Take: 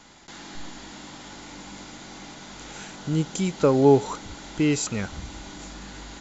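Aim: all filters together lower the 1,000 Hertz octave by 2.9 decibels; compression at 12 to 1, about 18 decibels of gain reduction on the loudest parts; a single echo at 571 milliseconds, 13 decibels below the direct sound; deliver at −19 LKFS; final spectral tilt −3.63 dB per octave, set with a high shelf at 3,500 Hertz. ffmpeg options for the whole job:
ffmpeg -i in.wav -af "equalizer=frequency=1000:width_type=o:gain=-4,highshelf=frequency=3500:gain=4.5,acompressor=threshold=-30dB:ratio=12,aecho=1:1:571:0.224,volume=18dB" out.wav

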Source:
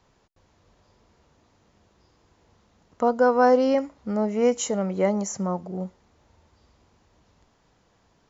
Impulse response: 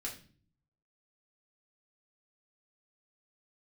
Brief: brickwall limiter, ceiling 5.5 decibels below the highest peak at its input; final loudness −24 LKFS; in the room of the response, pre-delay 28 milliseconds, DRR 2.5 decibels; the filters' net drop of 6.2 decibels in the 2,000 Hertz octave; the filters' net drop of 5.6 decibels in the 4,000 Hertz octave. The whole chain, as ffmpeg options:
-filter_complex "[0:a]equalizer=frequency=2000:width_type=o:gain=-9,equalizer=frequency=4000:width_type=o:gain=-5,alimiter=limit=-15dB:level=0:latency=1,asplit=2[link_01][link_02];[1:a]atrim=start_sample=2205,adelay=28[link_03];[link_02][link_03]afir=irnorm=-1:irlink=0,volume=-2dB[link_04];[link_01][link_04]amix=inputs=2:normalize=0"

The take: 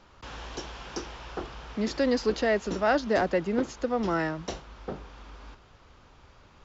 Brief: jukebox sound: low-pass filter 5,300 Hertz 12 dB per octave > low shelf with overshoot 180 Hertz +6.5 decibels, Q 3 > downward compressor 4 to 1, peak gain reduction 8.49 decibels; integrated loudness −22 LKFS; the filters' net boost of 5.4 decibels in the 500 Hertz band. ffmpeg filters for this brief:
ffmpeg -i in.wav -af "lowpass=5300,lowshelf=frequency=180:width_type=q:width=3:gain=6.5,equalizer=frequency=500:width_type=o:gain=7.5,acompressor=threshold=-25dB:ratio=4,volume=9.5dB" out.wav

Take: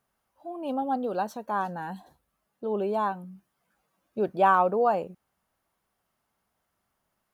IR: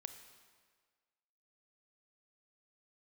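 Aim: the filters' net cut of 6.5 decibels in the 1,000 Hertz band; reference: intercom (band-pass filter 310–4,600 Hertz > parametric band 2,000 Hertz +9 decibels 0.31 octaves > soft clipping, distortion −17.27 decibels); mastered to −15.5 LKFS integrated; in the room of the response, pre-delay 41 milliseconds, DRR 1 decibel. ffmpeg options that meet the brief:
-filter_complex "[0:a]equalizer=frequency=1000:width_type=o:gain=-9,asplit=2[link_01][link_02];[1:a]atrim=start_sample=2205,adelay=41[link_03];[link_02][link_03]afir=irnorm=-1:irlink=0,volume=3dB[link_04];[link_01][link_04]amix=inputs=2:normalize=0,highpass=310,lowpass=4600,equalizer=frequency=2000:width_type=o:width=0.31:gain=9,asoftclip=threshold=-19.5dB,volume=16dB"

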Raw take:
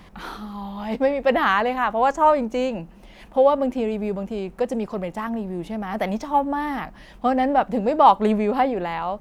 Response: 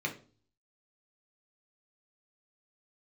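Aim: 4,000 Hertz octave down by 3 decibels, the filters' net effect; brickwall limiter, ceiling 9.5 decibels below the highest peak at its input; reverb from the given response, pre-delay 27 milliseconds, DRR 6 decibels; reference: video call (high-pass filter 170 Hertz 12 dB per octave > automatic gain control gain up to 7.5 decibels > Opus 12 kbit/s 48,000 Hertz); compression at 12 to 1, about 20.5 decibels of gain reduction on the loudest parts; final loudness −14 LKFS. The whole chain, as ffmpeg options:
-filter_complex "[0:a]equalizer=frequency=4000:width_type=o:gain=-4.5,acompressor=threshold=-31dB:ratio=12,alimiter=level_in=7dB:limit=-24dB:level=0:latency=1,volume=-7dB,asplit=2[link_01][link_02];[1:a]atrim=start_sample=2205,adelay=27[link_03];[link_02][link_03]afir=irnorm=-1:irlink=0,volume=-11dB[link_04];[link_01][link_04]amix=inputs=2:normalize=0,highpass=170,dynaudnorm=maxgain=7.5dB,volume=25.5dB" -ar 48000 -c:a libopus -b:a 12k

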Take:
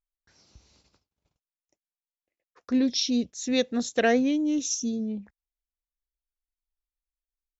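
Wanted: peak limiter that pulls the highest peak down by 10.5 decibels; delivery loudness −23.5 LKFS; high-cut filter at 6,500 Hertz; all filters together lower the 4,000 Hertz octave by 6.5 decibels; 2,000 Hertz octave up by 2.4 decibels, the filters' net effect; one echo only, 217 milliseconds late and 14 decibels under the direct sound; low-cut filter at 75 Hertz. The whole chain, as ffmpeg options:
ffmpeg -i in.wav -af "highpass=75,lowpass=6500,equalizer=frequency=2000:width_type=o:gain=5,equalizer=frequency=4000:width_type=o:gain=-9,alimiter=limit=-20.5dB:level=0:latency=1,aecho=1:1:217:0.2,volume=5.5dB" out.wav

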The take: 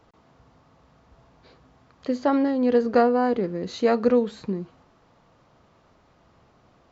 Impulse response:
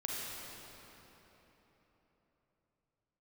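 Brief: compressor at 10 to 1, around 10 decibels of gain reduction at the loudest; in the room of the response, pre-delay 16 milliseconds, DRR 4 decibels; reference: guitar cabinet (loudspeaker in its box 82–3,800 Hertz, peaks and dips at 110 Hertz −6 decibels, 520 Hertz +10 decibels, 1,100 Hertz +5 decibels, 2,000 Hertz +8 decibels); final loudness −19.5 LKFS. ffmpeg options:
-filter_complex "[0:a]acompressor=threshold=-24dB:ratio=10,asplit=2[link_01][link_02];[1:a]atrim=start_sample=2205,adelay=16[link_03];[link_02][link_03]afir=irnorm=-1:irlink=0,volume=-7dB[link_04];[link_01][link_04]amix=inputs=2:normalize=0,highpass=82,equalizer=frequency=110:width_type=q:width=4:gain=-6,equalizer=frequency=520:width_type=q:width=4:gain=10,equalizer=frequency=1100:width_type=q:width=4:gain=5,equalizer=frequency=2000:width_type=q:width=4:gain=8,lowpass=frequency=3800:width=0.5412,lowpass=frequency=3800:width=1.3066,volume=4.5dB"

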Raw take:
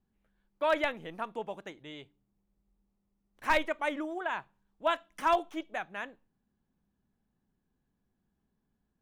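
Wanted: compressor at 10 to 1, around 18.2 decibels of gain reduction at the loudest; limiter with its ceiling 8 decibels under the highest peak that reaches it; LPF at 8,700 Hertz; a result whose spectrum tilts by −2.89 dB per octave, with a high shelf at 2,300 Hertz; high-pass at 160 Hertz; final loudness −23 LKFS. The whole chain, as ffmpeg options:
ffmpeg -i in.wav -af "highpass=160,lowpass=8700,highshelf=frequency=2300:gain=-7,acompressor=threshold=-42dB:ratio=10,volume=27dB,alimiter=limit=-11.5dB:level=0:latency=1" out.wav

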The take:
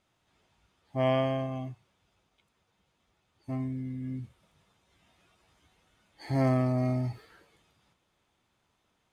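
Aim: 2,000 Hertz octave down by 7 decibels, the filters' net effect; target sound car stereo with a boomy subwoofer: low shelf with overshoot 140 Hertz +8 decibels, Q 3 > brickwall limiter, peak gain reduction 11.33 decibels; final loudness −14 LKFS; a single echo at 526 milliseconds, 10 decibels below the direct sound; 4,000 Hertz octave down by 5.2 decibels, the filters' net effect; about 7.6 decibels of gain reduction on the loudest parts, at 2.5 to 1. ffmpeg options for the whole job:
ffmpeg -i in.wav -af "equalizer=frequency=2000:width_type=o:gain=-7,equalizer=frequency=4000:width_type=o:gain=-4,acompressor=threshold=-33dB:ratio=2.5,lowshelf=frequency=140:width_type=q:width=3:gain=8,aecho=1:1:526:0.316,volume=25dB,alimiter=limit=-5.5dB:level=0:latency=1" out.wav

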